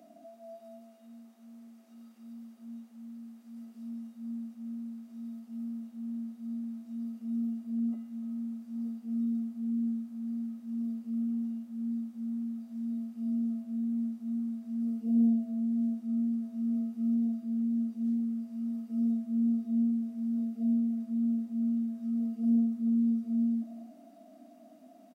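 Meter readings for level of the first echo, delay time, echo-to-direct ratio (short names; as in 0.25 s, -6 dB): -16.5 dB, 0.286 s, -16.5 dB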